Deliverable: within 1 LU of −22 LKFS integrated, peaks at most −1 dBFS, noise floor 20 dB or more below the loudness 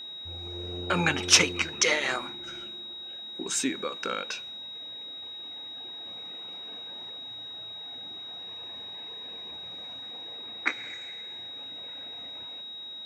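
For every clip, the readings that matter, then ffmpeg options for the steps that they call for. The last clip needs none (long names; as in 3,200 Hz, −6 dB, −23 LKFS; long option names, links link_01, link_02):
interfering tone 3,800 Hz; level of the tone −38 dBFS; integrated loudness −31.0 LKFS; sample peak −2.5 dBFS; target loudness −22.0 LKFS
→ -af "bandreject=frequency=3800:width=30"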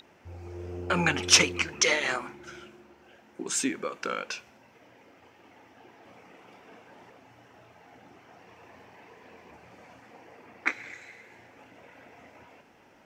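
interfering tone none found; integrated loudness −26.5 LKFS; sample peak −3.0 dBFS; target loudness −22.0 LKFS
→ -af "volume=4.5dB,alimiter=limit=-1dB:level=0:latency=1"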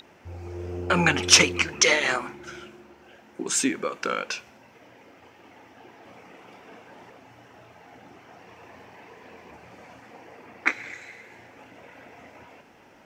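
integrated loudness −22.5 LKFS; sample peak −1.0 dBFS; background noise floor −54 dBFS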